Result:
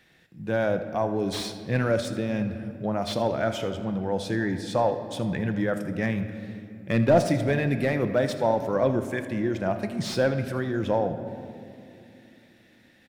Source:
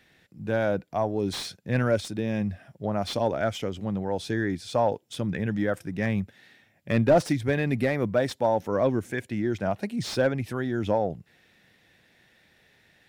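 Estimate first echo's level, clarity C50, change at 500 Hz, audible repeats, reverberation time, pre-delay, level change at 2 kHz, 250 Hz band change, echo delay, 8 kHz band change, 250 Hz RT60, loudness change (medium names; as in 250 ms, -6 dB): -16.0 dB, 9.0 dB, +1.0 dB, 1, 2.8 s, 6 ms, +0.5 dB, +1.0 dB, 79 ms, +0.5 dB, 4.4 s, +0.5 dB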